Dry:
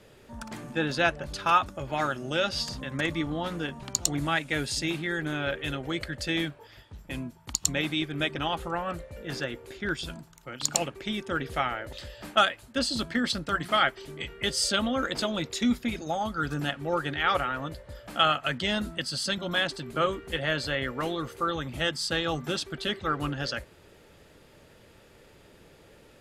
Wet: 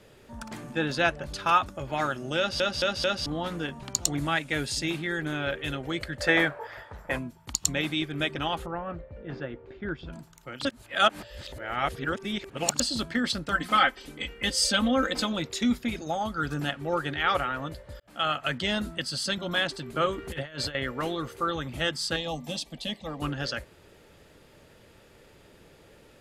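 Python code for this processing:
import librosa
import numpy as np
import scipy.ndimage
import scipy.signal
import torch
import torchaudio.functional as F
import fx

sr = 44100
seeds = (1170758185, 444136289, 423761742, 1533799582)

y = fx.band_shelf(x, sr, hz=960.0, db=14.0, octaves=2.5, at=(6.2, 7.17), fade=0.02)
y = fx.spacing_loss(y, sr, db_at_10k=40, at=(8.66, 10.13))
y = fx.comb(y, sr, ms=3.9, depth=0.71, at=(13.51, 15.33))
y = fx.over_compress(y, sr, threshold_db=-34.0, ratio=-0.5, at=(20.18, 20.75))
y = fx.fixed_phaser(y, sr, hz=380.0, stages=6, at=(22.16, 23.22))
y = fx.edit(y, sr, fx.stutter_over(start_s=2.38, slice_s=0.22, count=4),
    fx.reverse_span(start_s=10.65, length_s=2.15),
    fx.fade_in_span(start_s=18.0, length_s=0.43), tone=tone)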